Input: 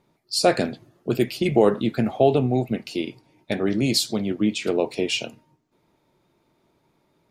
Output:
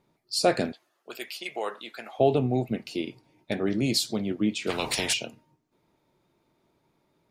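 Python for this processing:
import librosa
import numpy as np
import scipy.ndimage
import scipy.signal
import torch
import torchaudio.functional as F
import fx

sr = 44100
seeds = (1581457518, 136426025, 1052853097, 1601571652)

y = fx.highpass(x, sr, hz=930.0, slope=12, at=(0.72, 2.19))
y = fx.spectral_comp(y, sr, ratio=4.0, at=(4.69, 5.12), fade=0.02)
y = F.gain(torch.from_numpy(y), -4.0).numpy()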